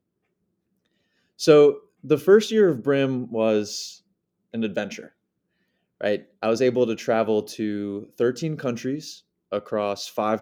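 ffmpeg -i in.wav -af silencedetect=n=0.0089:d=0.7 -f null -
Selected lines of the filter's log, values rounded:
silence_start: 0.00
silence_end: 1.39 | silence_duration: 1.39
silence_start: 5.07
silence_end: 6.01 | silence_duration: 0.94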